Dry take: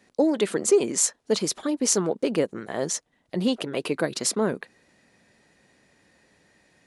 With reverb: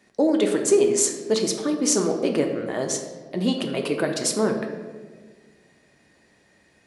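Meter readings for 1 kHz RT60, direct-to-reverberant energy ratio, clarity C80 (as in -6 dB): 1.3 s, 3.0 dB, 8.0 dB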